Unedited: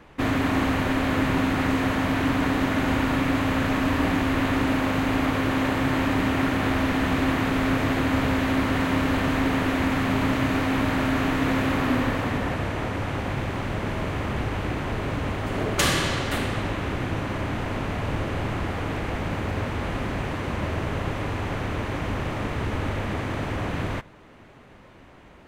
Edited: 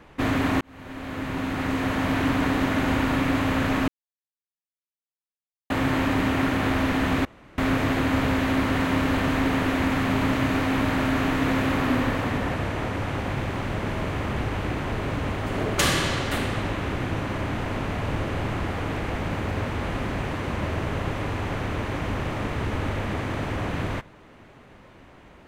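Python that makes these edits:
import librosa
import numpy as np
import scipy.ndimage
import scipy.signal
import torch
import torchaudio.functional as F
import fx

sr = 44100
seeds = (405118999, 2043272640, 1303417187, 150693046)

y = fx.edit(x, sr, fx.fade_in_span(start_s=0.61, length_s=1.53),
    fx.silence(start_s=3.88, length_s=1.82),
    fx.room_tone_fill(start_s=7.25, length_s=0.33), tone=tone)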